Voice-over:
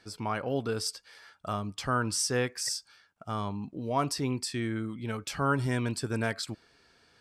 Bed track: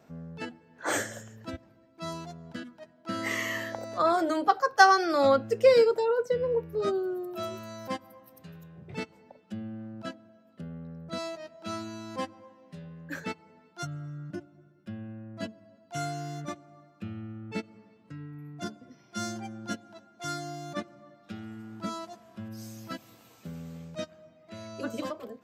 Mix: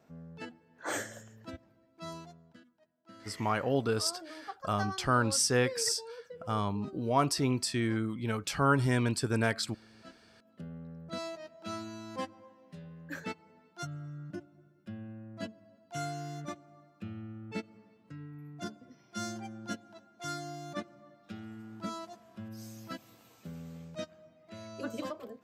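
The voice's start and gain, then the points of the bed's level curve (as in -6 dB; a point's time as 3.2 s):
3.20 s, +1.5 dB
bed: 2.18 s -6 dB
2.65 s -20 dB
9.86 s -20 dB
10.51 s -3.5 dB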